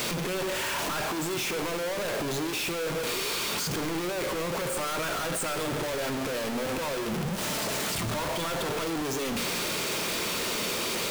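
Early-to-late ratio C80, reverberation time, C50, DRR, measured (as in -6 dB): 11.5 dB, 1.8 s, 10.5 dB, 9.0 dB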